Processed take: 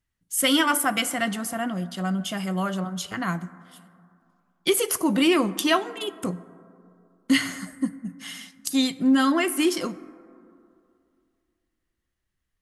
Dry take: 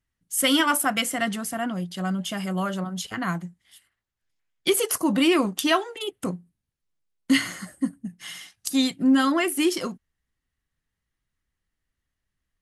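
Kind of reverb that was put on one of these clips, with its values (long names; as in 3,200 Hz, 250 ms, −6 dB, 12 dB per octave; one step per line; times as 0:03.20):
dense smooth reverb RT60 2.5 s, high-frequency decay 0.3×, DRR 15.5 dB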